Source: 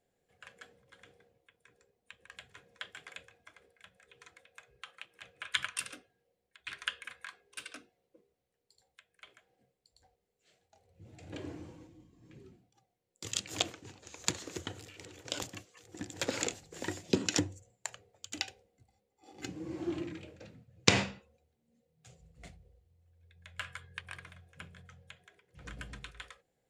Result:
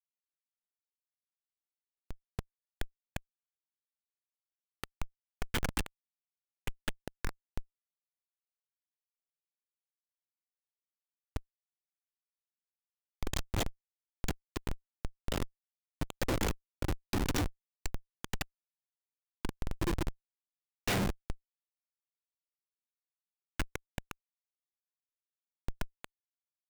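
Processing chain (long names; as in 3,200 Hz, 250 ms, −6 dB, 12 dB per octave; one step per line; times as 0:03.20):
echo through a band-pass that steps 207 ms, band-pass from 300 Hz, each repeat 0.7 octaves, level −12 dB
rotating-speaker cabinet horn 1.2 Hz, later 6.3 Hz, at 0:13.22
comparator with hysteresis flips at −34.5 dBFS
level +14.5 dB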